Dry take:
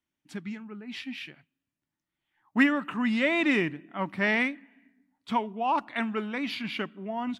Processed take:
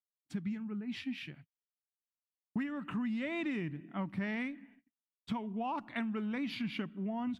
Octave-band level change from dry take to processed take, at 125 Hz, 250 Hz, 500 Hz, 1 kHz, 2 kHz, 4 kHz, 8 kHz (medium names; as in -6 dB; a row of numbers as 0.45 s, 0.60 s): -1.5 dB, -6.5 dB, -11.5 dB, -11.5 dB, -14.5 dB, -10.5 dB, no reading